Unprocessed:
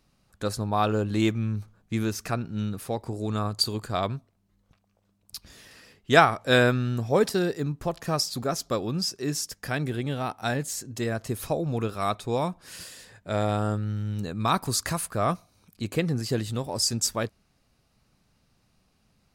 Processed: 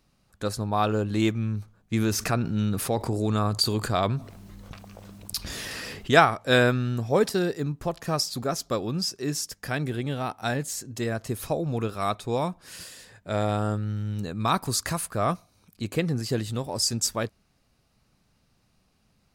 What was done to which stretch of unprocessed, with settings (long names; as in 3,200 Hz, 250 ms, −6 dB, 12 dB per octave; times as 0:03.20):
0:01.93–0:06.11: envelope flattener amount 50%